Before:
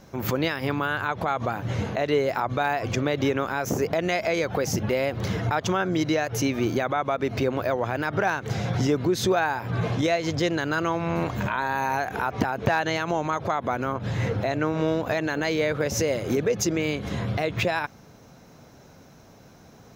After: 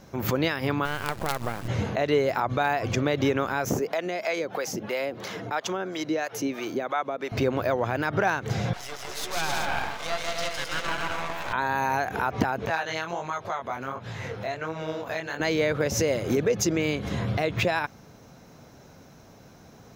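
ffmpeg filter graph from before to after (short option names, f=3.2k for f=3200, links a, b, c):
-filter_complex "[0:a]asettb=1/sr,asplit=3[a][b][c];[a]atrim=end=0.854[d];[b]atrim=start=0.85:end=1.68,asetpts=PTS-STARTPTS,afade=t=in:d=0.004:c=qsin,afade=t=out:st=0.826:d=0.004:c=qsin,highshelf=f=3.6k:g=-11.5,bandreject=f=280:w=8.3,acrusher=bits=4:dc=4:mix=0:aa=0.000001[e];[c]atrim=start=1.676[f];[d][e]acrossfade=d=0.004:c1=hsin:c2=qsin[g];[g][f]acrossfade=d=0.004:c1=qsin:c2=hsin,asettb=1/sr,asplit=3[h][i][j];[h]atrim=end=3.794[k];[i]atrim=start=3.79:end=7.32,asetpts=PTS-STARTPTS,afade=t=in:d=0.004:c=qsin,afade=t=out:st=3.526:d=0.004:c=qsin,highpass=260,acrossover=split=560[l][m];[l]aeval=exprs='val(0)*(1-0.7/2+0.7/2*cos(2*PI*3*n/s))':c=same[n];[m]aeval=exprs='val(0)*(1-0.7/2-0.7/2*cos(2*PI*3*n/s))':c=same[o];[n][o]amix=inputs=2:normalize=0[p];[j]atrim=start=7.316[q];[k][p]acrossfade=d=0.004:c1=hsin:c2=qsin[r];[r][q]acrossfade=d=0.004:c1=qsin:c2=hsin,asettb=1/sr,asplit=3[s][t][u];[s]atrim=end=8.734[v];[t]atrim=start=8.73:end=11.53,asetpts=PTS-STARTPTS,afade=t=in:d=0.004:c=qsin,afade=t=out:st=2.796:d=0.004:c=qsin,highpass=f=640:w=0.5412,highpass=f=640:w=1.3066,aecho=1:1:160|264|331.6|375.5|404.1:0.794|0.631|0.501|0.398|0.316,atrim=end_sample=123480,aeval=exprs='max(val(0),0)':c=same[w];[u]atrim=start=11.526[x];[v][w]acrossfade=d=0.004:c1=hsin:c2=qsin[y];[y][x]acrossfade=d=0.004:c1=qsin:c2=hsin,asettb=1/sr,asplit=3[z][aa][ab];[z]atrim=end=12.664[ac];[aa]atrim=start=12.66:end=15.4,asetpts=PTS-STARTPTS,afade=t=in:d=0.004:c=qsin,afade=t=out:st=2.736:d=0.004:c=qsin,lowshelf=f=460:g=-8.5,bandreject=f=300:w=9.6,flanger=delay=17.5:depth=7.9:speed=1.4[ad];[ab]atrim=start=15.396[ae];[ac][ad]acrossfade=d=0.004:c1=hsin:c2=qsin[af];[af][ae]acrossfade=d=0.004:c1=qsin:c2=hsin"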